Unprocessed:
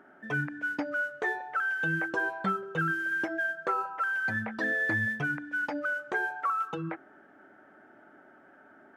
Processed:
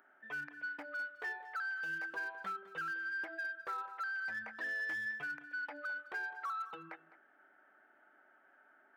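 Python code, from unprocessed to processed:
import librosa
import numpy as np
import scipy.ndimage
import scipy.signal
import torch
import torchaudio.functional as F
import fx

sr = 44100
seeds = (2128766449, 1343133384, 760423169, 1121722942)

p1 = scipy.ndimage.gaussian_filter1d(x, 3.3, mode='constant')
p2 = np.clip(10.0 ** (26.5 / 20.0) * p1, -1.0, 1.0) / 10.0 ** (26.5 / 20.0)
p3 = p1 + F.gain(torch.from_numpy(p2), -9.0).numpy()
p4 = np.diff(p3, prepend=0.0)
p5 = 10.0 ** (-38.5 / 20.0) * np.tanh(p4 / 10.0 ** (-38.5 / 20.0))
p6 = p5 + fx.echo_single(p5, sr, ms=207, db=-16.5, dry=0)
y = F.gain(torch.from_numpy(p6), 5.5).numpy()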